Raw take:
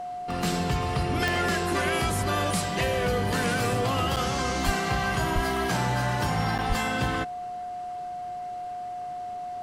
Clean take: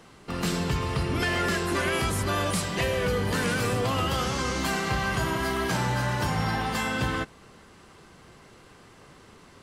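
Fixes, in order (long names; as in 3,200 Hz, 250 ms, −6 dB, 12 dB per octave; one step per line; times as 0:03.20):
click removal
notch filter 720 Hz, Q 30
0:04.65–0:04.77: high-pass filter 140 Hz 24 dB per octave
0:05.34–0:05.46: high-pass filter 140 Hz 24 dB per octave
0:06.68–0:06.80: high-pass filter 140 Hz 24 dB per octave
repair the gap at 0:04.16/0:06.58, 7.7 ms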